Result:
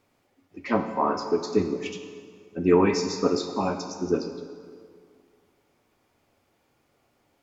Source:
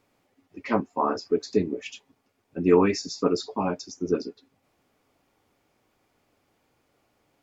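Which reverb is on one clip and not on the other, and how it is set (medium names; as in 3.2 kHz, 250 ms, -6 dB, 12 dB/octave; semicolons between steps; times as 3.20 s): plate-style reverb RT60 2 s, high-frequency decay 0.75×, DRR 6 dB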